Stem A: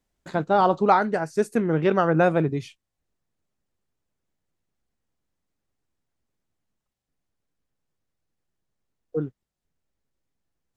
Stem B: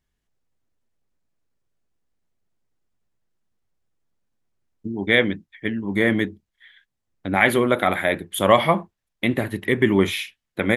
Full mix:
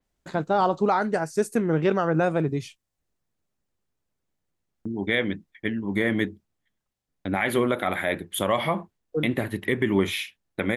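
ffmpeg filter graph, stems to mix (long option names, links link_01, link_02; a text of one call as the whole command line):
ffmpeg -i stem1.wav -i stem2.wav -filter_complex "[0:a]adynamicequalizer=threshold=0.00631:dfrequency=5300:dqfactor=0.7:tfrequency=5300:tqfactor=0.7:attack=5:release=100:ratio=0.375:range=3.5:mode=boostabove:tftype=highshelf,volume=0dB[link_01];[1:a]agate=range=-39dB:threshold=-44dB:ratio=16:detection=peak,volume=-2dB[link_02];[link_01][link_02]amix=inputs=2:normalize=0,alimiter=limit=-11.5dB:level=0:latency=1:release=146" out.wav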